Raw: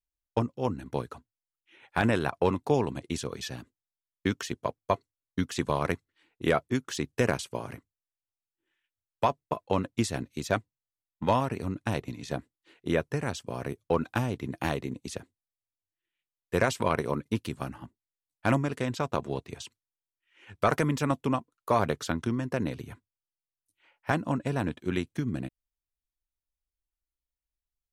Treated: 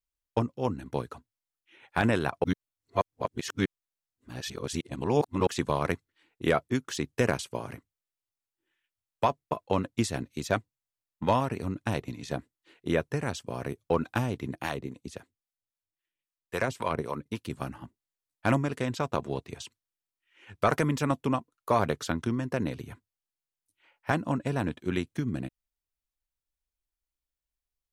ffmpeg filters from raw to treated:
-filter_complex "[0:a]asettb=1/sr,asplit=3[a][b][c];[a]atrim=end=14.554[d];[b]atrim=start=14.55:end=17.5,asetpts=PTS-STARTPTS,afade=t=in:d=0.004:c=qsin,afade=t=out:st=2.946:d=0.004:c=qsin,acrossover=split=580[e][f];[e]aeval=exprs='val(0)*(1-0.7/2+0.7/2*cos(2*PI*3.7*n/s))':c=same[g];[f]aeval=exprs='val(0)*(1-0.7/2-0.7/2*cos(2*PI*3.7*n/s))':c=same[h];[g][h]amix=inputs=2:normalize=0[i];[c]atrim=start=17.496[j];[d][i]acrossfade=d=0.004:c1=hsin:c2=qsin[k];[k][j]acrossfade=d=0.004:c1=qsin:c2=hsin,asplit=3[l][m][n];[l]atrim=end=2.442[o];[m]atrim=start=2.438:end=5.472,asetpts=PTS-STARTPTS,areverse[p];[n]atrim=start=5.468[q];[o][p]acrossfade=d=0.004:c1=hsin:c2=hsin[r];[r][q]acrossfade=d=0.004:c1=hsin:c2=hsin"

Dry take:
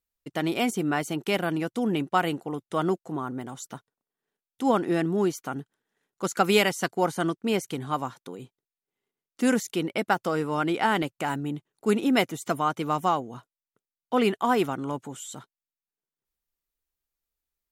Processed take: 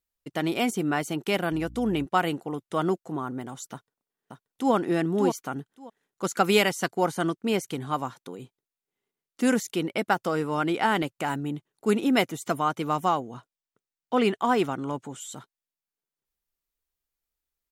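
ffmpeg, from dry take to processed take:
-filter_complex "[0:a]asettb=1/sr,asplit=3[a][b][c];[a]atrim=end=1.524[d];[b]atrim=start=1.52:end=2.06,asetpts=PTS-STARTPTS,afade=t=in:d=0.004:c=qsin,afade=t=out:st=0.536:d=0.004:c=qsin,aeval=exprs='val(0)+0.00708*(sin(2*PI*60*n/s)+sin(2*PI*2*60*n/s)/2+sin(2*PI*3*60*n/s)/3+sin(2*PI*4*60*n/s)/4+sin(2*PI*5*60*n/s)/5)':c=same[e];[c]atrim=start=2.056[f];[d][e]acrossfade=d=0.004:c1=hsin:c2=qsin[g];[g][f]acrossfade=d=0.004:c1=qsin:c2=hsin,asplit=2[h][i];[i]afade=t=in:st=3.72:d=0.01,afade=t=out:st=4.73:d=0.01,aecho=0:1:580|1160|1740:0.530884|0.0796327|0.0119449[j];[h][j]amix=inputs=2:normalize=0,asettb=1/sr,asplit=3[k][l][m];[k]atrim=end=13.304[n];[l]atrim=start=13.3:end=15.21,asetpts=PTS-STARTPTS,afade=t=in:d=0.004:c=qsin,afade=t=out:st=1.906:d=0.004:c=qsin,equalizer=f=12k:w=2.7:g=-11.5[o];[m]atrim=start=15.206[p];[n][o]acrossfade=d=0.004:c1=hsin:c2=qsin[q];[q][p]acrossfade=d=0.004:c1=qsin:c2=hsin"

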